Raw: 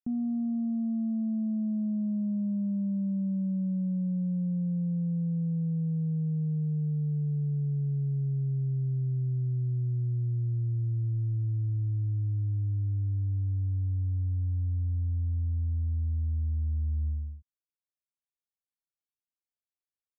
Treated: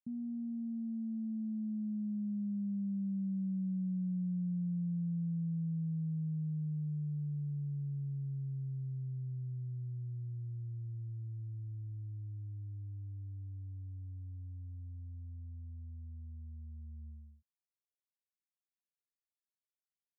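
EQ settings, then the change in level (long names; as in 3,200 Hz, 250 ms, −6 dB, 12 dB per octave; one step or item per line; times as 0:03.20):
resonant band-pass 180 Hz, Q 2.1
−6.0 dB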